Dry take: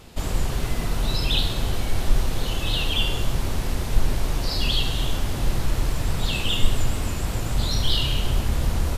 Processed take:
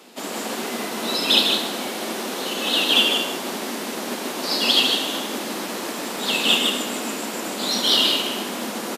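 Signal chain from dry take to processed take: steep high-pass 210 Hz 48 dB/octave; delay 154 ms -3.5 dB; upward expansion 1.5:1, over -35 dBFS; trim +8.5 dB

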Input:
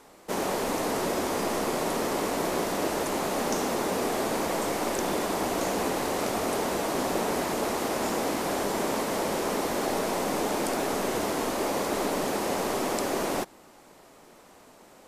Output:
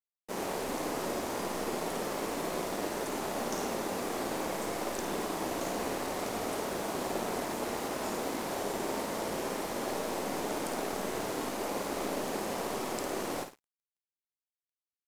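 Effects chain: flutter echo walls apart 9.2 m, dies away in 0.48 s; crossover distortion -41 dBFS; trim -6 dB

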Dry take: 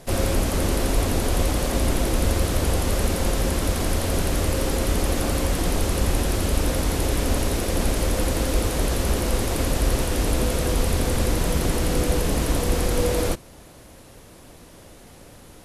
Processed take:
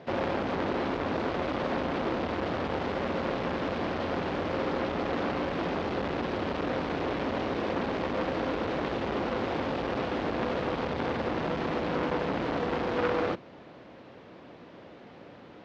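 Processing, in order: band-pass 180–4200 Hz; distance through air 230 m; transformer saturation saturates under 1.3 kHz; trim +1 dB

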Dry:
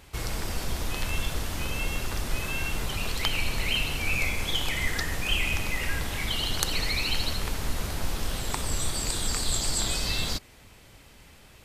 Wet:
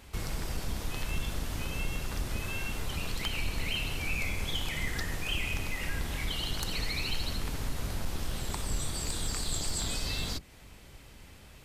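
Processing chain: octave divider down 1 oct, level +2 dB; in parallel at +1.5 dB: compression 10:1, threshold -34 dBFS, peak gain reduction 15 dB; on the sum: hard clipper -15 dBFS, distortion -26 dB; trim -8.5 dB

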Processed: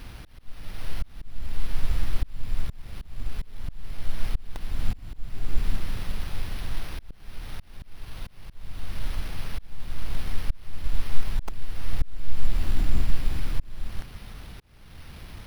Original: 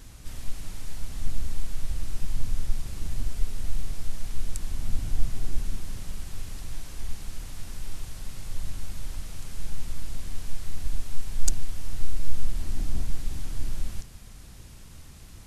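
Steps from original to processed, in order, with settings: careless resampling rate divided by 6×, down none, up hold; slow attack 553 ms; trim +5 dB

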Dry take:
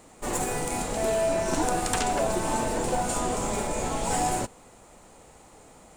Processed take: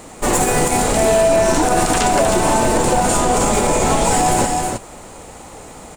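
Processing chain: delay 315 ms -8 dB; loudness maximiser +19.5 dB; trim -5 dB

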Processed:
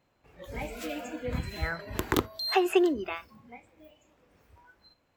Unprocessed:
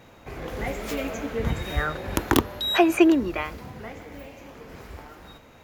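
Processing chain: tape speed +9%; spectral noise reduction 15 dB; trim -6 dB

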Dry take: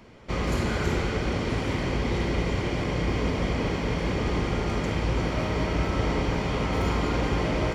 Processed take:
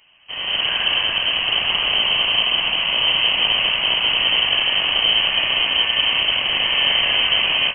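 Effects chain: rattle on loud lows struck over -25 dBFS, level -25 dBFS; level rider gain up to 15 dB; frequency inversion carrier 3.1 kHz; trim -5.5 dB

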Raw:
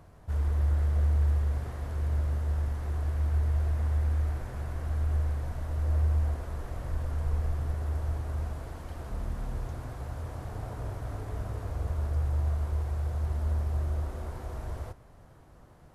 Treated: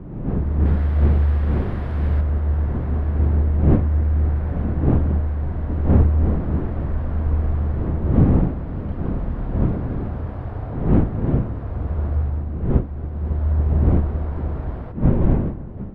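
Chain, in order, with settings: wind noise 210 Hz -28 dBFS; 0.65–2.21 s: treble shelf 2.1 kHz +11.5 dB; filtered feedback delay 279 ms, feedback 73%, low-pass 2.4 kHz, level -18 dB; level rider gain up to 10 dB; distance through air 430 m; trim -1 dB

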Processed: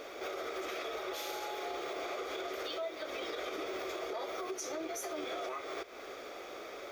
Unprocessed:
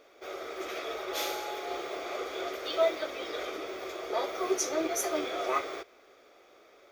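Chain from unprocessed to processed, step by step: compression 12:1, threshold -46 dBFS, peak gain reduction 24.5 dB; peak limiter -43 dBFS, peak gain reduction 7 dB; trim +12.5 dB

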